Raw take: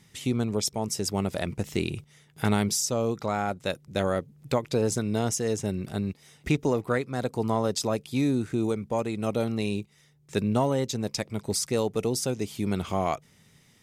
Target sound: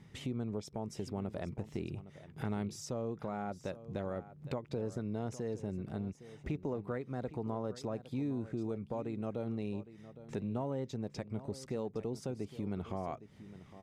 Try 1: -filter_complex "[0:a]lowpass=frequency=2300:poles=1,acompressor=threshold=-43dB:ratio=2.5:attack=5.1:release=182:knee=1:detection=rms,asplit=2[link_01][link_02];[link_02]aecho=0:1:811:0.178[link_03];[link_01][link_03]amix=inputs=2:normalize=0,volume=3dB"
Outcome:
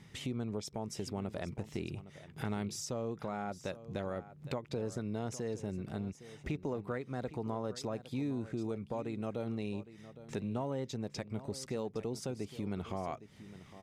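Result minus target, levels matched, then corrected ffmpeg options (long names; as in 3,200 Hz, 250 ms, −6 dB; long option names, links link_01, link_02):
2,000 Hz band +3.5 dB
-filter_complex "[0:a]lowpass=frequency=990:poles=1,acompressor=threshold=-43dB:ratio=2.5:attack=5.1:release=182:knee=1:detection=rms,asplit=2[link_01][link_02];[link_02]aecho=0:1:811:0.178[link_03];[link_01][link_03]amix=inputs=2:normalize=0,volume=3dB"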